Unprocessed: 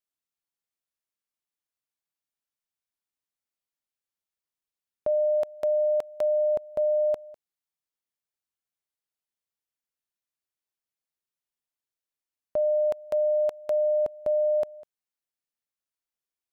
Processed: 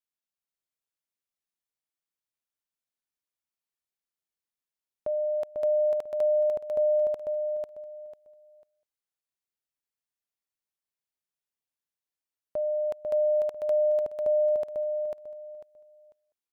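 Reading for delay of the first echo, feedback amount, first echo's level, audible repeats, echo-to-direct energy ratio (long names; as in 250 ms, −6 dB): 496 ms, 24%, −3.5 dB, 3, −3.0 dB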